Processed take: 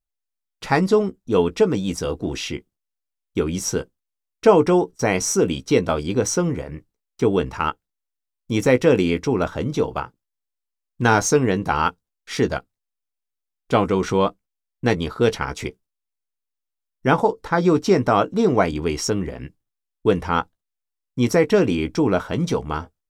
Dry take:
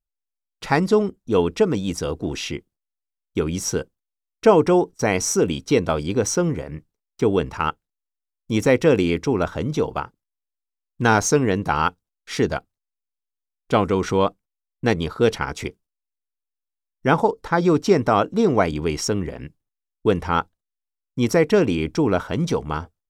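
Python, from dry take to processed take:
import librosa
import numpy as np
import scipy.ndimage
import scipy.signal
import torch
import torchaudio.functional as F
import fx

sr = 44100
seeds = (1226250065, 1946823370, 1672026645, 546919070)

y = fx.doubler(x, sr, ms=16.0, db=-11.0)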